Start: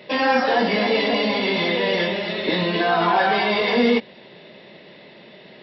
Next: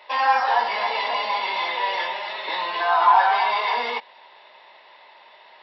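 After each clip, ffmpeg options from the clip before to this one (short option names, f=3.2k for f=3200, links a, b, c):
-af "highpass=f=930:t=q:w=4.9,volume=-5dB"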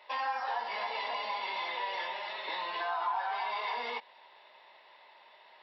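-af "acompressor=threshold=-24dB:ratio=3,volume=-8.5dB"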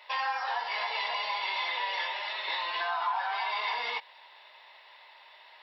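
-af "highpass=f=1.4k:p=1,volume=7dB"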